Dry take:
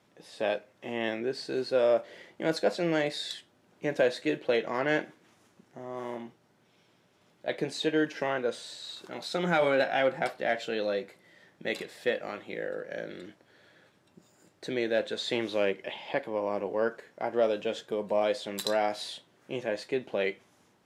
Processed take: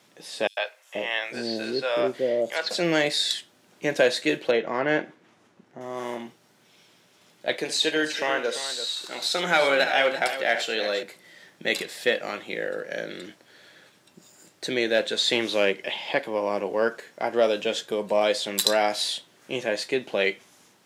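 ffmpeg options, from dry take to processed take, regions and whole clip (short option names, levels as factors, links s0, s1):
-filter_complex "[0:a]asettb=1/sr,asplit=3[s0][s1][s2];[s0]atrim=end=0.474[s3];[s1]atrim=start=0.47:end=2.71,asetpts=PTS-STARTPTS,afade=t=in:d=0.004:c=qsin,afade=t=out:st=2.236:d=0.004:c=qsin,acrossover=split=5000[s4][s5];[s5]acompressor=threshold=0.00126:ratio=4:attack=1:release=60[s6];[s4][s6]amix=inputs=2:normalize=0,acrossover=split=590|5900[s7][s8][s9];[s8]adelay=100[s10];[s7]adelay=480[s11];[s11][s10][s9]amix=inputs=3:normalize=0,atrim=end_sample=98784[s12];[s2]atrim=start=2.706[s13];[s3][s12]acrossfade=d=0.004:c1=hsin:c2=qsin[s14];[s14][s13]acrossfade=d=0.004:c1=qsin:c2=hsin,asettb=1/sr,asplit=3[s15][s16][s17];[s15]atrim=end=4.514[s18];[s16]atrim=start=4.51:end=5.81,asetpts=PTS-STARTPTS,afade=t=in:d=0.004:c=qsin,afade=t=out:st=1.296:d=0.004:c=qsin,lowpass=f=3000:p=1,highshelf=f=2200:g=-7.5[s19];[s17]atrim=start=5.806[s20];[s18][s19]acrossfade=d=0.004:c1=hsin:c2=qsin[s21];[s21][s20]acrossfade=d=0.004:c1=qsin:c2=hsin,asettb=1/sr,asplit=3[s22][s23][s24];[s22]atrim=end=7.574[s25];[s23]atrim=start=7.57:end=11.03,asetpts=PTS-STARTPTS,afade=t=in:d=0.004:c=qsin,afade=t=out:st=3.456:d=0.004:c=qsin,highpass=f=430:p=1,aecho=1:1:72|340:0.266|0.266,atrim=end_sample=152586[s26];[s24]atrim=start=11.026[s27];[s25][s26]acrossfade=d=0.004:c1=hsin:c2=qsin[s28];[s28][s27]acrossfade=d=0.004:c1=qsin:c2=hsin,highpass=120,highshelf=f=2200:g=10,volume=1.58"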